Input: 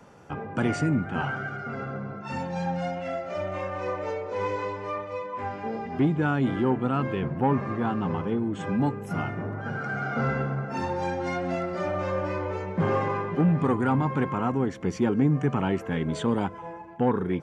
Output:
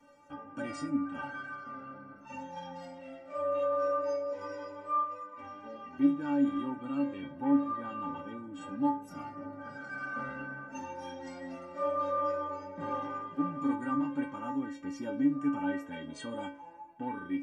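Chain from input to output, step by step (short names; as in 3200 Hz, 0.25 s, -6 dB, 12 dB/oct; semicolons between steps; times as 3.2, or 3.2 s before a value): metallic resonator 280 Hz, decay 0.41 s, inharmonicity 0.008; gain +8 dB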